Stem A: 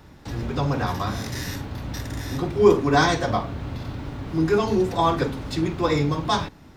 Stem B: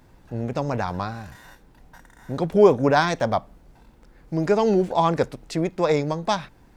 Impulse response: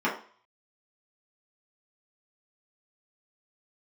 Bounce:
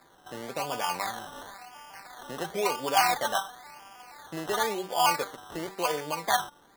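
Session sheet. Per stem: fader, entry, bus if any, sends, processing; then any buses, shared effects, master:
+3.0 dB, 0.00 s, no send, arpeggiated vocoder major triad, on G3, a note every 0.158 s; elliptic high-pass 720 Hz
-1.0 dB, 0.00 s, no send, compressor 3:1, threshold -28 dBFS, peak gain reduction 14.5 dB; bell 150 Hz +8.5 dB 0.76 oct; de-hum 94.51 Hz, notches 5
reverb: off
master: three-band isolator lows -24 dB, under 310 Hz, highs -13 dB, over 2200 Hz; decimation with a swept rate 15×, swing 60% 0.96 Hz

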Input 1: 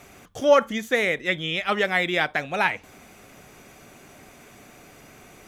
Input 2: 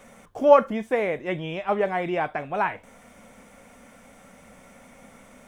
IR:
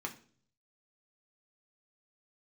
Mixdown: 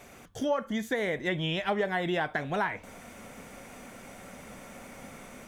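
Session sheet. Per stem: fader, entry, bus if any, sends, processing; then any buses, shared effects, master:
-4.0 dB, 0.00 s, no send, compressor, threshold -23 dBFS, peak gain reduction 11.5 dB
-6.0 dB, 0.00 s, no send, AGC gain up to 8.5 dB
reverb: off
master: compressor 3:1, threshold -27 dBFS, peak gain reduction 9.5 dB

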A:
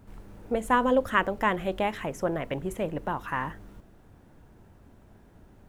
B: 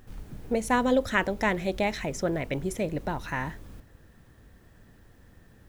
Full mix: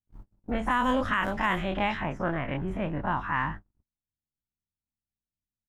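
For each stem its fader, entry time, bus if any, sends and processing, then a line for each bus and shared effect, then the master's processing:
+2.0 dB, 0.00 s, no send, spectral dilation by 60 ms; bell 470 Hz -13.5 dB 0.97 oct; low-pass opened by the level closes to 490 Hz, open at -20 dBFS
-11.5 dB, 3.4 ms, no send, compressor, threshold -33 dBFS, peak gain reduction 13.5 dB; auto duck -14 dB, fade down 1.95 s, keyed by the first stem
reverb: off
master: gate -36 dBFS, range -48 dB; limiter -16 dBFS, peak gain reduction 10.5 dB

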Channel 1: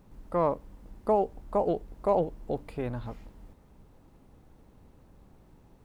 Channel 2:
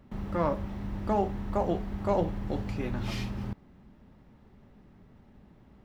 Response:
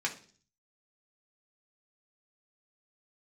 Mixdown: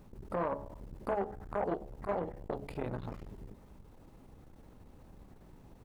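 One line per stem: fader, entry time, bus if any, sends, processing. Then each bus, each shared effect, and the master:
+2.5 dB, 0.00 s, no send, de-hum 70.39 Hz, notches 27; compressor 5:1, threshold -32 dBFS, peak gain reduction 11.5 dB
-11.5 dB, 10 ms, no send, chopper 10 Hz, depth 65%, duty 35%; stepped low-pass 2.5 Hz 400–1900 Hz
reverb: off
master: core saturation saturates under 630 Hz

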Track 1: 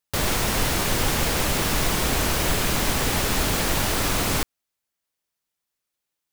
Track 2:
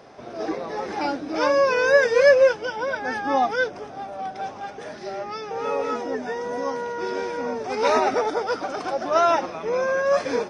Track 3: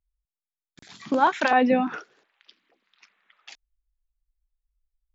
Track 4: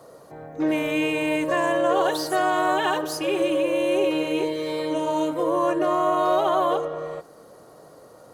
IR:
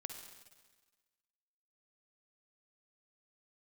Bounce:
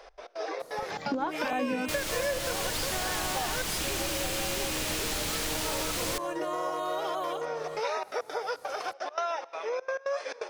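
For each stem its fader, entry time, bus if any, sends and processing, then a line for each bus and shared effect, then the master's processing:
-4.5 dB, 1.75 s, send -19 dB, high shelf 11000 Hz -8 dB
-3.5 dB, 0.00 s, send -16.5 dB, Chebyshev high-pass 470 Hz, order 3; high shelf 4200 Hz -10 dB; step gate "x.x.xxx.xx" 170 bpm -24 dB
-2.5 dB, 0.00 s, no send, tilt -3.5 dB/oct
-6.0 dB, 0.60 s, no send, dry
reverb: on, RT60 1.4 s, pre-delay 46 ms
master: high shelf 2000 Hz +10.5 dB; compressor 4:1, threshold -30 dBFS, peak gain reduction 15.5 dB

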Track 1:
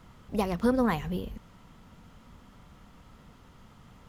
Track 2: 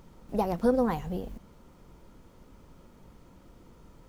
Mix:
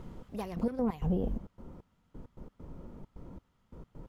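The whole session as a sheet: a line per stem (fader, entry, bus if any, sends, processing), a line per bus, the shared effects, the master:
-3.5 dB, 0.00 s, no send, soft clip -20.5 dBFS, distortion -14 dB; auto duck -15 dB, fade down 1.35 s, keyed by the second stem
-1.5 dB, 0.00 s, no send, tilt shelf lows +9.5 dB, about 1400 Hz; compressor, threshold -20 dBFS, peak gain reduction 9 dB; step gate "xx...x.x.xxxx." 133 bpm -60 dB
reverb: off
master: limiter -22 dBFS, peak gain reduction 8 dB

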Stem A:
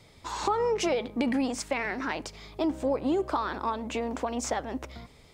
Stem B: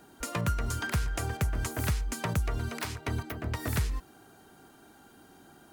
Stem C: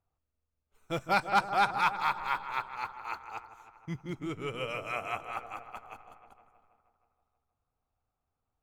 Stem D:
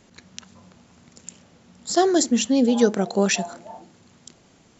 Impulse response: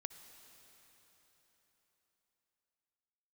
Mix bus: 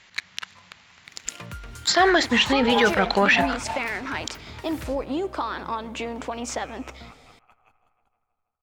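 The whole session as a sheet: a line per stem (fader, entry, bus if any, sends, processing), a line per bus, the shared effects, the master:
-3.0 dB, 2.05 s, send -7.5 dB, dry
-9.5 dB, 1.05 s, no send, dry
-17.0 dB, 1.75 s, no send, low shelf 170 Hz +9.5 dB
-1.5 dB, 0.00 s, no send, graphic EQ 250/500/1000/2000/4000 Hz -10/-4/+5/+11/+6 dB; sample leveller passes 2; treble ducked by the level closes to 2200 Hz, closed at -13.5 dBFS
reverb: on, RT60 4.3 s, pre-delay 53 ms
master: bell 2900 Hz +5.5 dB 2.2 oct; limiter -9.5 dBFS, peak gain reduction 10 dB

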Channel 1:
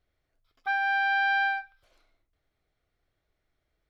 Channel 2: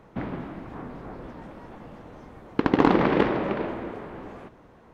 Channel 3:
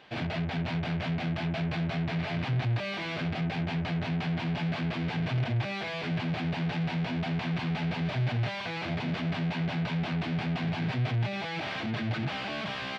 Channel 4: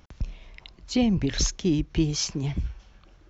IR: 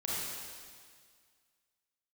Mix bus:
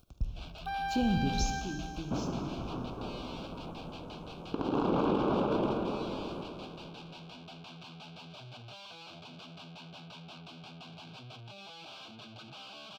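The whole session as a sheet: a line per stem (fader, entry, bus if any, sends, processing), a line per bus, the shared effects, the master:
-4.0 dB, 0.00 s, send -5.5 dB, no echo send, high shelf 6500 Hz +10.5 dB; limiter -25.5 dBFS, peak gain reduction 8 dB
-2.0 dB, 1.95 s, no send, echo send -8 dB, dry
-13.0 dB, 0.25 s, no send, no echo send, tilt +3 dB/oct
1.38 s -10.5 dB -> 1.74 s -22.5 dB, 0.00 s, send -8.5 dB, no echo send, low shelf 210 Hz +6 dB; crossover distortion -45 dBFS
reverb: on, RT60 1.9 s, pre-delay 27 ms
echo: feedback echo 0.242 s, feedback 59%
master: upward compressor, threshold -56 dBFS; Butterworth band-stop 1900 Hz, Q 1.6; limiter -20 dBFS, peak gain reduction 13.5 dB

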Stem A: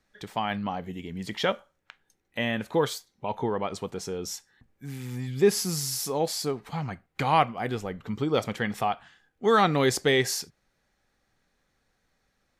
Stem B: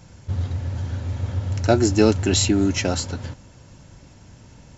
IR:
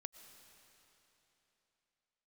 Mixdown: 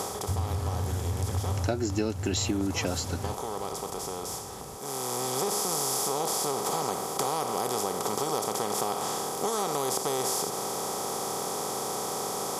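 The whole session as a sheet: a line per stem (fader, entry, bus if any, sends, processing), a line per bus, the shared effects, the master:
-13.0 dB, 0.00 s, send -15.5 dB, per-bin compression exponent 0.2; EQ curve 250 Hz 0 dB, 1000 Hz +5 dB, 1800 Hz -9 dB, 7300 Hz +13 dB; auto duck -11 dB, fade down 0.30 s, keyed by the second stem
-2.0 dB, 0.00 s, no send, dry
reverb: on, RT60 3.5 s, pre-delay 75 ms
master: HPF 43 Hz; compressor 6:1, threshold -25 dBFS, peak gain reduction 12.5 dB

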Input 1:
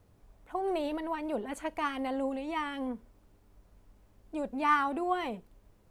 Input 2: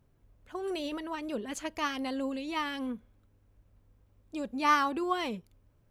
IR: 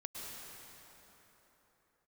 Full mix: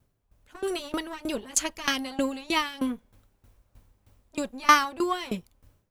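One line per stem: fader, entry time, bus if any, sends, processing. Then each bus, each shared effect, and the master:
-17.0 dB, 0.00 s, no send, minimum comb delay 9.9 ms
0.0 dB, 0.00 s, polarity flipped, no send, high shelf 2900 Hz +9.5 dB; dB-ramp tremolo decaying 3.2 Hz, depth 21 dB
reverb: off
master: AGC gain up to 11 dB

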